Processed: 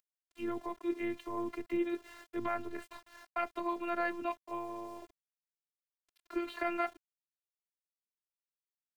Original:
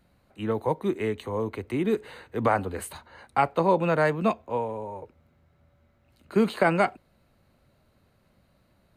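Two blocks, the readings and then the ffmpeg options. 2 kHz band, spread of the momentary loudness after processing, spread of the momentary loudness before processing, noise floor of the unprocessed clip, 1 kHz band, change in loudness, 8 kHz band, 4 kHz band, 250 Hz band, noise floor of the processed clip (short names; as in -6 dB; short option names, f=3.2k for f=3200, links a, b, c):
-10.0 dB, 10 LU, 14 LU, -66 dBFS, -11.0 dB, -11.0 dB, -16.0 dB, -10.5 dB, -9.0 dB, under -85 dBFS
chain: -filter_complex "[0:a]lowpass=3.1k,acrossover=split=170|1500[a][b][c];[b]alimiter=limit=-22dB:level=0:latency=1:release=290[d];[c]acompressor=mode=upward:threshold=-49dB:ratio=2.5[e];[a][d][e]amix=inputs=3:normalize=0,aeval=exprs='val(0)*gte(abs(val(0)),0.00422)':c=same,afftfilt=real='hypot(re,im)*cos(PI*b)':imag='0':win_size=512:overlap=0.75,volume=-2dB"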